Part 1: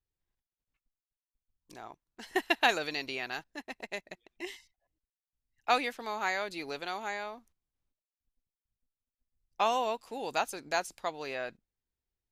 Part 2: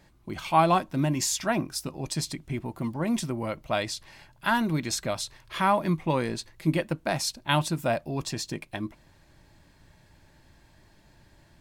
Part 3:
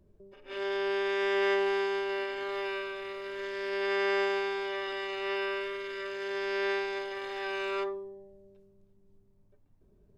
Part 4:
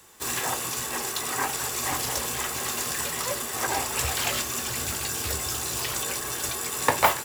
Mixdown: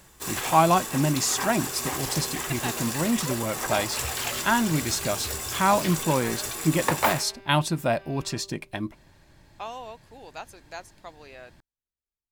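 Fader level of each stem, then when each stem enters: -8.5, +2.0, -16.5, -3.0 dB; 0.00, 0.00, 0.55, 0.00 s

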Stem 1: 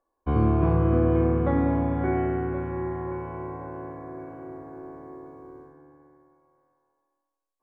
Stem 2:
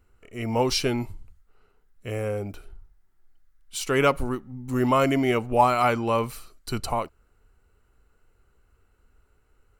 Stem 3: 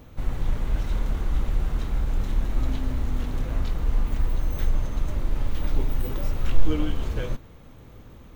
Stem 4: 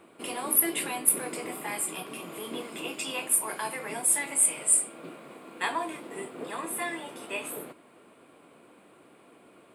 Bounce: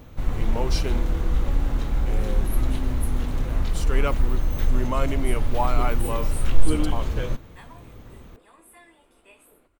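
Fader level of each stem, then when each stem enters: -15.5, -7.0, +2.0, -18.5 dB; 0.00, 0.00, 0.00, 1.95 s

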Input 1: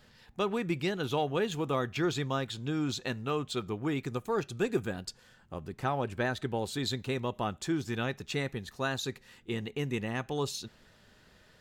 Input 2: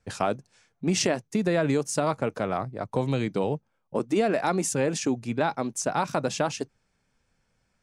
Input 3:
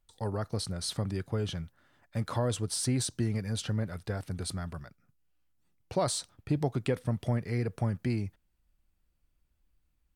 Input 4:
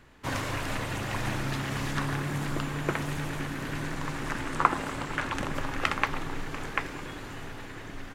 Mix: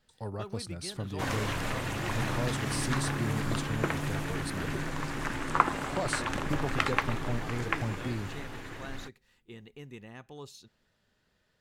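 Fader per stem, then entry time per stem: -13.0 dB, off, -4.5 dB, -1.0 dB; 0.00 s, off, 0.00 s, 0.95 s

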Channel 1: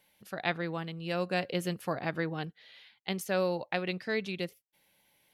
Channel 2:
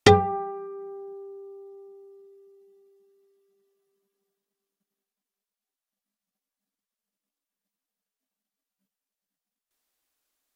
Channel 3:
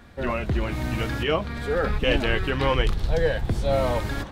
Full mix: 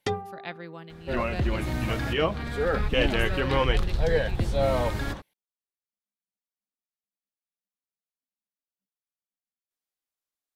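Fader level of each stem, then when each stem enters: -6.5, -13.5, -1.5 dB; 0.00, 0.00, 0.90 s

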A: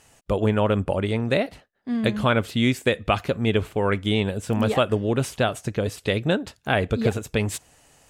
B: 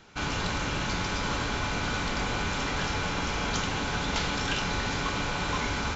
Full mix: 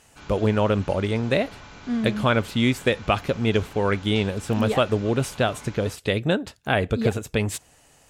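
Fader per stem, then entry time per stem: 0.0, -14.0 dB; 0.00, 0.00 s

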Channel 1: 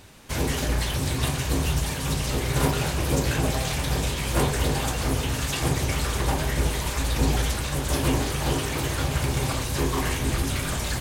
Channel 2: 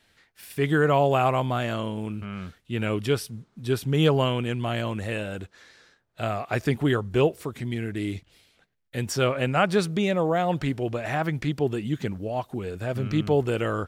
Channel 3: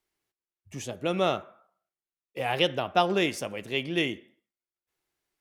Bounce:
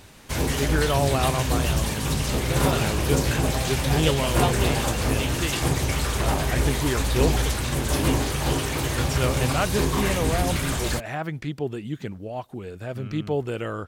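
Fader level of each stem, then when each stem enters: +1.0, -3.5, -4.0 dB; 0.00, 0.00, 1.45 s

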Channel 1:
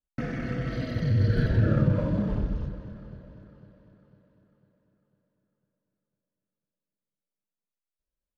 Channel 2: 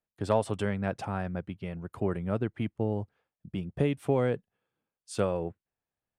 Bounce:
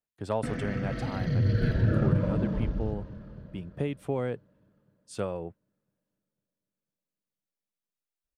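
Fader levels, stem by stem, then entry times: -2.0, -4.0 dB; 0.25, 0.00 s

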